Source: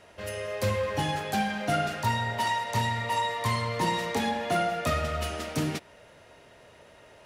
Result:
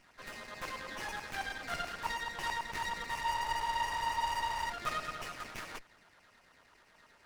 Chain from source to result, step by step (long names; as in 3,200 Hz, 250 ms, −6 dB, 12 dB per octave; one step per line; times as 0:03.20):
auto-filter high-pass saw down 9.2 Hz 1,000–2,900 Hz
frozen spectrum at 0:03.25, 1.45 s
windowed peak hold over 9 samples
level −7 dB